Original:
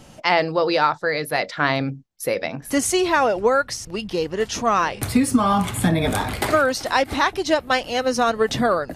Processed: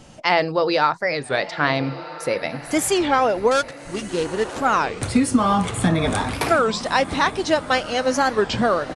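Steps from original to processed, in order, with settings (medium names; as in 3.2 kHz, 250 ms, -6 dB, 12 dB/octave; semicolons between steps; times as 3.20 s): 3.51–4.60 s: dead-time distortion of 0.14 ms; resampled via 22.05 kHz; echo that smears into a reverb 1309 ms, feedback 43%, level -14.5 dB; warped record 33 1/3 rpm, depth 250 cents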